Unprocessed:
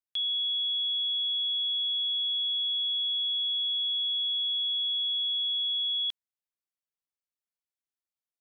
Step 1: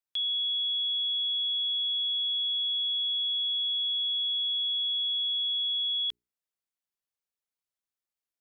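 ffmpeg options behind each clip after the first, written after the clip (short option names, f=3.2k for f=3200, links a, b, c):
-af "bandreject=f=60:t=h:w=6,bandreject=f=120:t=h:w=6,bandreject=f=180:t=h:w=6,bandreject=f=240:t=h:w=6,bandreject=f=300:t=h:w=6,bandreject=f=360:t=h:w=6,bandreject=f=420:t=h:w=6"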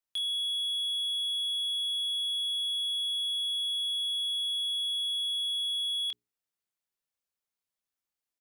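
-filter_complex "[0:a]asplit=2[a][b];[b]adelay=26,volume=-7dB[c];[a][c]amix=inputs=2:normalize=0,volume=29.5dB,asoftclip=hard,volume=-29.5dB"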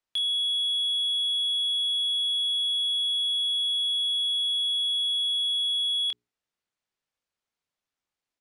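-af "adynamicsmooth=sensitivity=2.5:basefreq=6.6k,volume=6dB"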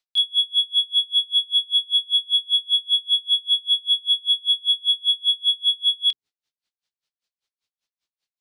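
-af "equalizer=f=4.3k:t=o:w=1.7:g=13.5,aeval=exprs='val(0)*pow(10,-32*(0.5-0.5*cos(2*PI*5.1*n/s))/20)':c=same"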